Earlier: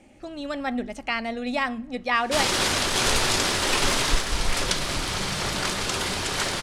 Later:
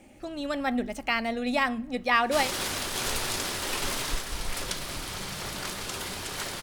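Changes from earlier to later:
background -8.5 dB; master: remove low-pass 8.7 kHz 12 dB/octave

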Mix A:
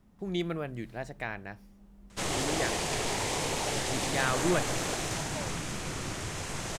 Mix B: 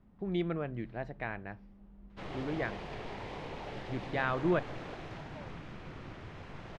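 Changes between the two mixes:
background -8.5 dB; master: add distance through air 340 m

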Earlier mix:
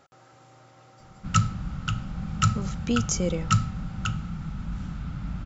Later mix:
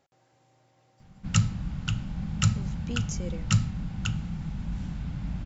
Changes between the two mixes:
speech -10.5 dB; master: add peaking EQ 1.3 kHz -13.5 dB 0.25 oct

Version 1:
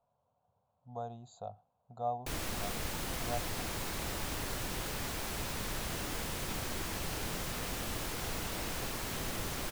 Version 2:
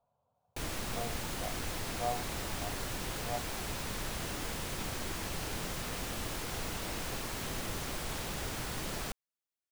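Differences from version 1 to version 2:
background: entry -1.70 s; master: add peaking EQ 14 kHz -3 dB 0.36 oct

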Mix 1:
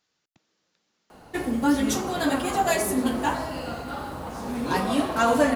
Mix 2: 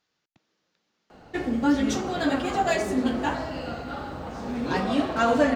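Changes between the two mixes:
background: add peaking EQ 1 kHz -5.5 dB 0.34 oct; master: add boxcar filter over 4 samples

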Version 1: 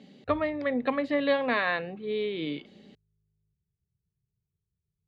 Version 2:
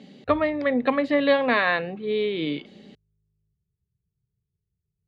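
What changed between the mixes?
speech +5.5 dB; reverb: on

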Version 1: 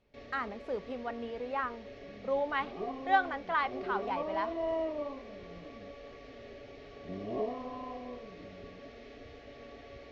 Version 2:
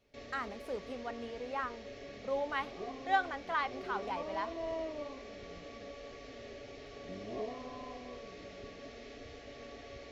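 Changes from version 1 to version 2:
speech -4.0 dB; second sound -6.0 dB; master: remove distance through air 140 m

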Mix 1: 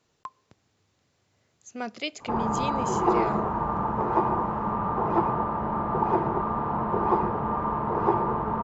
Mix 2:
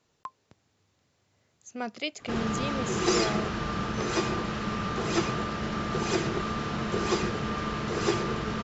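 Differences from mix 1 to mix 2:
background: remove resonant low-pass 930 Hz, resonance Q 7.9; reverb: off

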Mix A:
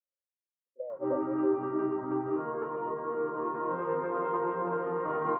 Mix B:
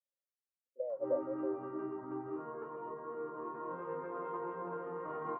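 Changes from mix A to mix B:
background -11.5 dB; reverb: on

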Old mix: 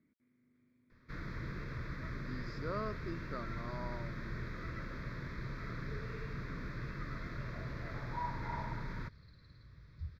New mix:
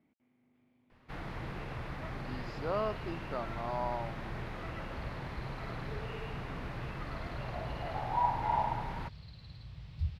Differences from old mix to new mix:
second sound +9.5 dB; master: remove static phaser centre 2.9 kHz, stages 6

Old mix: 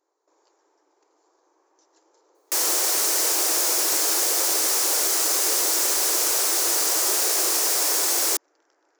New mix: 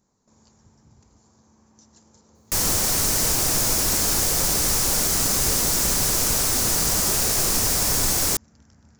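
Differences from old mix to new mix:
speech: remove low-pass 2.1 kHz 6 dB/octave; master: remove brick-wall FIR high-pass 300 Hz

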